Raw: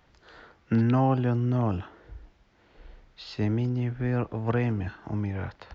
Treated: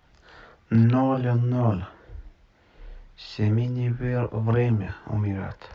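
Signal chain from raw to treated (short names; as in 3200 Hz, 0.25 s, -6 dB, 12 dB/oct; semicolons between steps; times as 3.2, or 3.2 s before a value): chorus voices 4, 0.73 Hz, delay 27 ms, depth 1.1 ms; gain +5 dB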